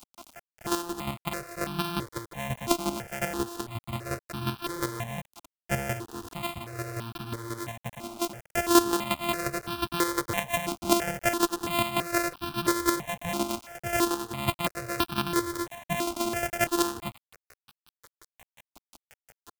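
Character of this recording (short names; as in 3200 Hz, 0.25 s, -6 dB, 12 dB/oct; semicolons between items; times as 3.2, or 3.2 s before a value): a buzz of ramps at a fixed pitch in blocks of 128 samples; chopped level 5.6 Hz, depth 60%, duty 20%; a quantiser's noise floor 8-bit, dither none; notches that jump at a steady rate 3 Hz 480–2000 Hz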